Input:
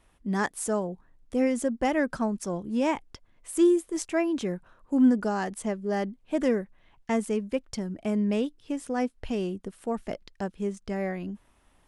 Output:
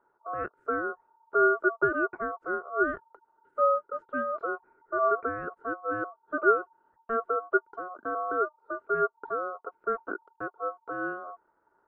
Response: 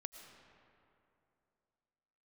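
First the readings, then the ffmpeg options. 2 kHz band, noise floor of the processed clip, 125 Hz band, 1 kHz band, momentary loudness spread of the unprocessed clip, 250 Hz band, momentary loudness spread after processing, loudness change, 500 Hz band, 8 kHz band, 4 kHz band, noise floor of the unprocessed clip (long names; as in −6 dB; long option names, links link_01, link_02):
+7.0 dB, −72 dBFS, −15.0 dB, +6.0 dB, 13 LU, −13.0 dB, 13 LU, −1.5 dB, −0.5 dB, below −40 dB, below −30 dB, −64 dBFS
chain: -af "lowpass=frequency=510:width_type=q:width=5.9,aeval=exprs='val(0)*sin(2*PI*910*n/s)':channel_layout=same,volume=-6dB"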